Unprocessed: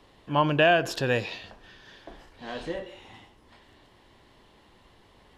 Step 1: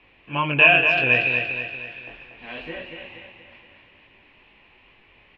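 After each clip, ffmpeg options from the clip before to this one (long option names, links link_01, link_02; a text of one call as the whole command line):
ffmpeg -i in.wav -filter_complex "[0:a]lowpass=frequency=2500:width_type=q:width=11,flanger=delay=18.5:depth=6.2:speed=2.2,asplit=2[link_01][link_02];[link_02]aecho=0:1:236|472|708|944|1180|1416:0.501|0.246|0.12|0.059|0.0289|0.0142[link_03];[link_01][link_03]amix=inputs=2:normalize=0" out.wav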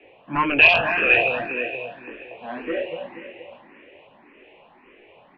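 ffmpeg -i in.wav -filter_complex "[0:a]acrossover=split=480 3600:gain=0.251 1 0.0794[link_01][link_02][link_03];[link_01][link_02][link_03]amix=inputs=3:normalize=0,acrossover=split=170|580|960[link_04][link_05][link_06][link_07];[link_05]aeval=exprs='0.0708*sin(PI/2*5.01*val(0)/0.0708)':channel_layout=same[link_08];[link_04][link_08][link_06][link_07]amix=inputs=4:normalize=0,asplit=2[link_09][link_10];[link_10]afreqshift=1.8[link_11];[link_09][link_11]amix=inputs=2:normalize=1,volume=3.5dB" out.wav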